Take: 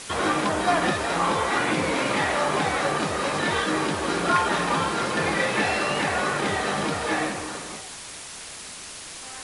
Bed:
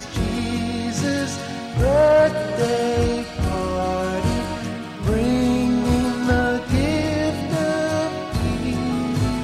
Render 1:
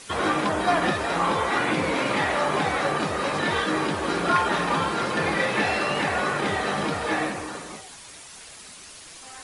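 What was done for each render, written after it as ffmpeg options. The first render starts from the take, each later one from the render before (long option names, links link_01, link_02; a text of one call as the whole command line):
ffmpeg -i in.wav -af "afftdn=noise_reduction=7:noise_floor=-39" out.wav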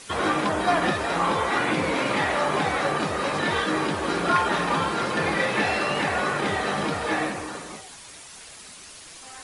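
ffmpeg -i in.wav -af anull out.wav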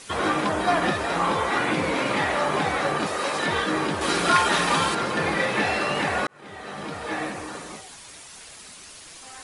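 ffmpeg -i in.wav -filter_complex "[0:a]asettb=1/sr,asplit=3[link_01][link_02][link_03];[link_01]atrim=end=3.064[link_04];[link_02]atrim=start=3.06:end=3.46,asetpts=PTS-STARTPTS,afade=type=in:duration=0.004:curve=qsin,afade=type=out:start_time=0.396:duration=0.004:curve=qsin,bass=frequency=250:gain=-10,treble=frequency=4000:gain=5[link_05];[link_03]atrim=start=3.456[link_06];[link_04][link_05]acrossfade=duration=0.004:curve1=hsin:curve2=qsin[link_07];[link_07][link_06]acrossfade=duration=0.004:curve1=qsin:curve2=hsin,asettb=1/sr,asplit=3[link_08][link_09][link_10];[link_08]atrim=end=4.014[link_11];[link_09]atrim=start=4.01:end=4.95,asetpts=PTS-STARTPTS,afade=type=in:duration=0.004:curve=qsin,afade=type=out:start_time=0.936:duration=0.004:curve=qsin,highshelf=frequency=2500:gain=10.5[link_12];[link_10]atrim=start=4.946[link_13];[link_11][link_12]acrossfade=duration=0.004:curve1=hsin:curve2=qsin[link_14];[link_14][link_13]acrossfade=duration=0.004:curve1=qsin:curve2=hsin,asplit=2[link_15][link_16];[link_15]atrim=end=6.27,asetpts=PTS-STARTPTS,afade=type=out:start_time=6.266:duration=0.004:curve=hsin[link_17];[link_16]atrim=start=6.27,asetpts=PTS-STARTPTS,afade=type=in:duration=1.39[link_18];[link_17][link_18]concat=n=2:v=0:a=1" out.wav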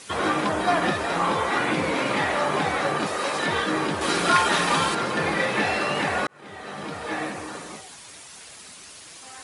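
ffmpeg -i in.wav -af "highpass=68" out.wav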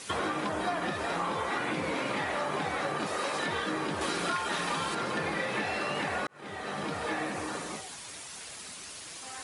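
ffmpeg -i in.wav -af "acompressor=threshold=-29dB:ratio=6" out.wav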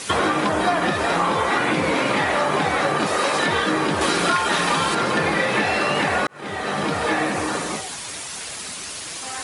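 ffmpeg -i in.wav -af "volume=11.5dB" out.wav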